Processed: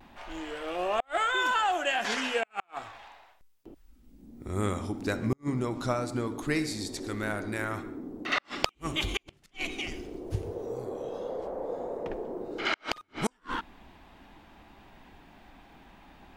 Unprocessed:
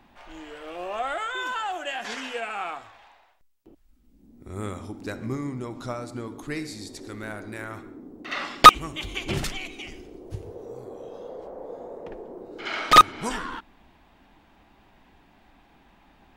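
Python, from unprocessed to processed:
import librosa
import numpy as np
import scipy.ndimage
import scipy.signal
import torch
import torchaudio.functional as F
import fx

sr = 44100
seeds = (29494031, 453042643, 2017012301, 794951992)

y = fx.gate_flip(x, sr, shuts_db=-19.0, range_db=-41)
y = fx.vibrato(y, sr, rate_hz=0.37, depth_cents=20.0)
y = y * librosa.db_to_amplitude(3.5)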